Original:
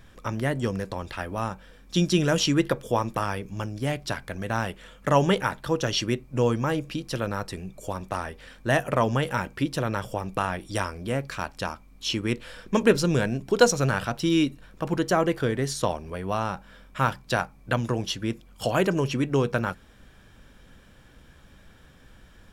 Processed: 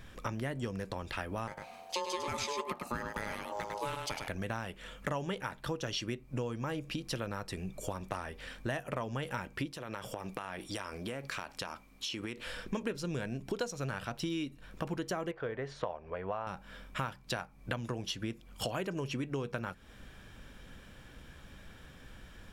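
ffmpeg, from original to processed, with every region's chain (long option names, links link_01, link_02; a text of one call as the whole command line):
ffmpeg -i in.wav -filter_complex "[0:a]asettb=1/sr,asplit=3[link_01][link_02][link_03];[link_01]atrim=end=1.474[link_04];[link_02]atrim=start=1.47:end=4.28,asetpts=PTS-STARTPTS,afade=type=in:duration=0.004:curve=qsin,afade=type=out:start_time=2.806:duration=0.004:curve=qsin,highshelf=frequency=5300:gain=5,aeval=exprs='val(0)*sin(2*PI*720*n/s)':channel_layout=same,aecho=1:1:102:0.501,atrim=end_sample=123921[link_05];[link_03]atrim=start=4.276[link_06];[link_04][link_05]acrossfade=duration=0.004:curve1=hsin:curve2=qsin[link_07];[link_07][link_06]acrossfade=duration=0.004:curve1=qsin:curve2=hsin,asettb=1/sr,asplit=3[link_08][link_09][link_10];[link_08]atrim=end=9.714[link_11];[link_09]atrim=start=9.71:end=12.46,asetpts=PTS-STARTPTS,afade=type=in:duration=0.004:curve=qsin,afade=type=out:start_time=2.746:duration=0.004:curve=qsin,lowshelf=frequency=140:gain=-12,acompressor=threshold=-33dB:ratio=10:attack=3.2:release=140:knee=1:detection=peak[link_12];[link_10]atrim=start=12.456[link_13];[link_11][link_12]acrossfade=duration=0.004:curve1=hsin:curve2=qsin[link_14];[link_14][link_13]acrossfade=duration=0.004:curve1=qsin:curve2=hsin,asettb=1/sr,asplit=3[link_15][link_16][link_17];[link_15]atrim=end=15.314[link_18];[link_16]atrim=start=15.31:end=16.47,asetpts=PTS-STARTPTS,afade=type=in:duration=0.004:curve=qsin,afade=type=out:start_time=1.156:duration=0.004:curve=qsin,lowpass=1900,lowshelf=frequency=390:width_type=q:width=1.5:gain=-7.5[link_19];[link_17]atrim=start=16.466[link_20];[link_18][link_19]acrossfade=duration=0.004:curve1=hsin:curve2=qsin[link_21];[link_21][link_20]acrossfade=duration=0.004:curve1=qsin:curve2=hsin,equalizer=frequency=2500:width=1.5:gain=2.5,acompressor=threshold=-34dB:ratio=6" out.wav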